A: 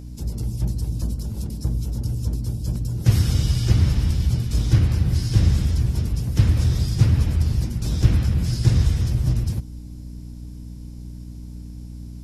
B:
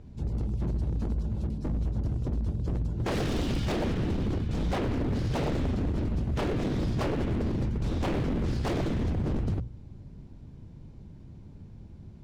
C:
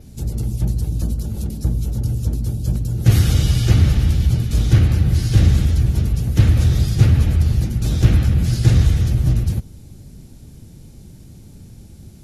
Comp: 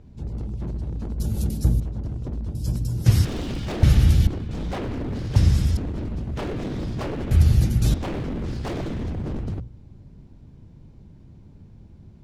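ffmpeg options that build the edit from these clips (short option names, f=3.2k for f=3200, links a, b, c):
-filter_complex "[2:a]asplit=3[a][b][c];[0:a]asplit=2[d][e];[1:a]asplit=6[f][g][h][i][j][k];[f]atrim=end=1.202[l];[a]atrim=start=1.198:end=1.802[m];[g]atrim=start=1.798:end=2.552[n];[d]atrim=start=2.548:end=3.252[o];[h]atrim=start=3.248:end=3.832[p];[b]atrim=start=3.828:end=4.272[q];[i]atrim=start=4.268:end=5.362[r];[e]atrim=start=5.358:end=5.772[s];[j]atrim=start=5.768:end=7.312[t];[c]atrim=start=7.308:end=7.942[u];[k]atrim=start=7.938[v];[l][m]acrossfade=d=0.004:c1=hsin:c2=hsin[w];[w][n]acrossfade=d=0.004:c1=hsin:c2=hsin[x];[x][o]acrossfade=d=0.004:c1=hsin:c2=hsin[y];[y][p]acrossfade=d=0.004:c1=hsin:c2=hsin[z];[z][q]acrossfade=d=0.004:c1=hsin:c2=hsin[aa];[aa][r]acrossfade=d=0.004:c1=hsin:c2=hsin[ab];[ab][s]acrossfade=d=0.004:c1=hsin:c2=hsin[ac];[ac][t]acrossfade=d=0.004:c1=hsin:c2=hsin[ad];[ad][u]acrossfade=d=0.004:c1=hsin:c2=hsin[ae];[ae][v]acrossfade=d=0.004:c1=hsin:c2=hsin"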